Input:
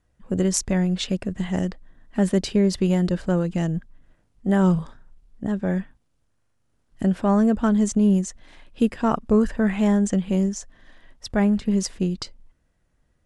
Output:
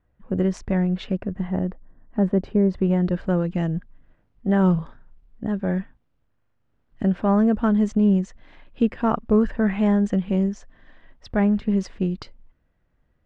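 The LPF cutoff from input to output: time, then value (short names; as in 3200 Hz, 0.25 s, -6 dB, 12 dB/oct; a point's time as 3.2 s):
1.01 s 2100 Hz
1.65 s 1100 Hz
2.63 s 1100 Hz
3.25 s 2800 Hz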